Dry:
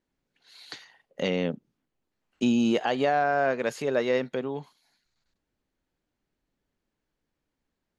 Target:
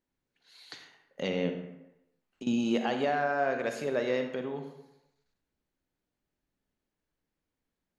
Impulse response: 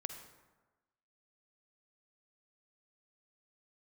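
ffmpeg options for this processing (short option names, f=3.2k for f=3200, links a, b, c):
-filter_complex "[0:a]asettb=1/sr,asplit=3[a][b][c];[a]atrim=end=1.494[d];[b]atrim=start=1.49:end=2.47,asetpts=PTS-STARTPTS,afade=t=in:d=0.004:c=qsin,afade=t=out:st=0.976:d=0.004:c=qsin,acompressor=threshold=-36dB:ratio=10[e];[c]atrim=start=2.466[f];[d][e]acrossfade=d=0.004:c1=hsin:c2=qsin[g];[g][f]acrossfade=d=0.004:c1=qsin:c2=hsin[h];[1:a]atrim=start_sample=2205,asetrate=57330,aresample=44100[i];[h][i]afir=irnorm=-1:irlink=0"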